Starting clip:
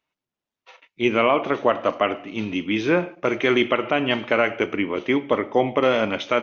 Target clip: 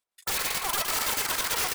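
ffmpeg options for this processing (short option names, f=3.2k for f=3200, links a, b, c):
-af "asetrate=162288,aresample=44100,aeval=exprs='(mod(8.91*val(0)+1,2)-1)/8.91':c=same,aecho=1:1:116|232|348|464|580|696|812|928:0.501|0.296|0.174|0.103|0.0607|0.0358|0.0211|0.0125,volume=-3dB"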